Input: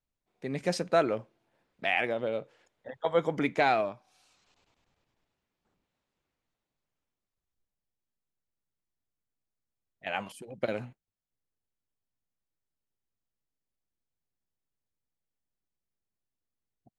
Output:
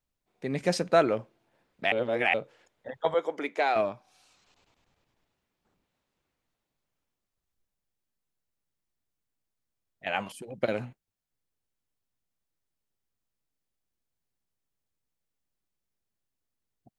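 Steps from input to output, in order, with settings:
0:01.92–0:02.34: reverse
0:03.14–0:03.76: four-pole ladder high-pass 290 Hz, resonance 20%
level +3 dB

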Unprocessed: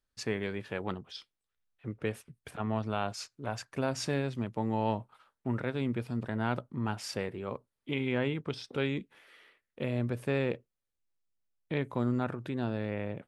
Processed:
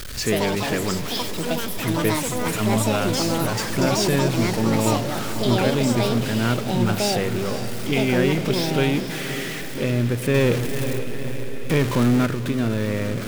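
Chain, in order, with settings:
converter with a step at zero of −35 dBFS
parametric band 830 Hz −10.5 dB 0.68 octaves
delay with pitch and tempo change per echo 142 ms, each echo +7 semitones, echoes 2
feedback delay with all-pass diffusion 483 ms, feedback 65%, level −11.5 dB
0:10.34–0:12.26: power curve on the samples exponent 0.7
level +9 dB

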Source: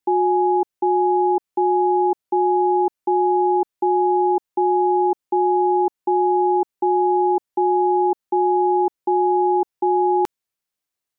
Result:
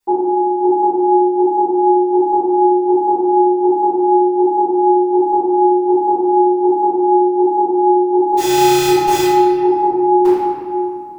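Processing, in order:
0:08.37–0:09.22: one scale factor per block 3 bits
brickwall limiter −20.5 dBFS, peak gain reduction 9.5 dB
convolution reverb RT60 2.3 s, pre-delay 3 ms, DRR −20.5 dB
level −2.5 dB

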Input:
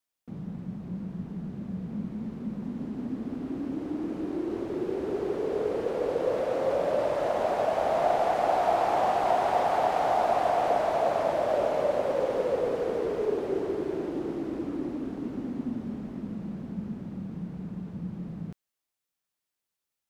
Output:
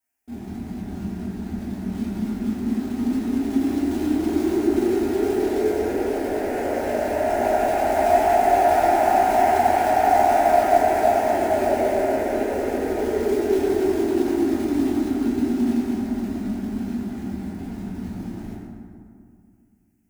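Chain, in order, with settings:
0:13.97–0:15.06: notch filter 490 Hz, Q 12
dynamic equaliser 970 Hz, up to −6 dB, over −38 dBFS, Q 1.3
phaser with its sweep stopped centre 770 Hz, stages 8
floating-point word with a short mantissa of 2 bits
convolution reverb RT60 2.2 s, pre-delay 6 ms, DRR −8.5 dB
level +2.5 dB

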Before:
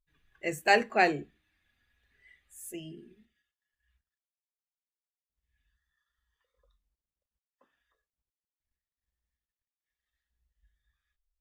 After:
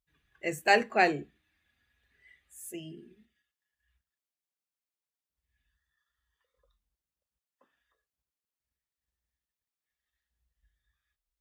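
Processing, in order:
high-pass filter 49 Hz

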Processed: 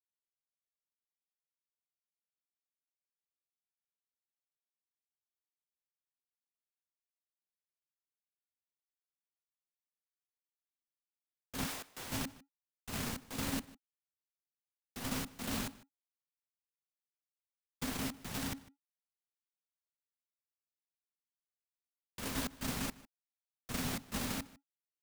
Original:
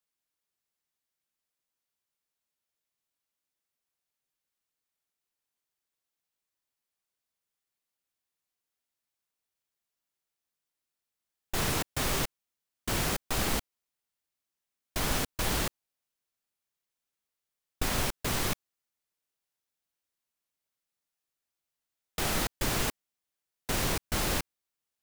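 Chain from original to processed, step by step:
0:11.65–0:12.09: high-pass filter 960 Hz → 280 Hz 12 dB per octave
noise gate −26 dBFS, range −19 dB
in parallel at −2.5 dB: compressor whose output falls as the input rises −41 dBFS
on the sum: brickwall limiter −25.5 dBFS, peak gain reduction 7 dB
transient designer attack +1 dB, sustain +6 dB
frequency shifter −280 Hz
dead-zone distortion −59 dBFS
slap from a distant wall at 26 metres, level −20 dB

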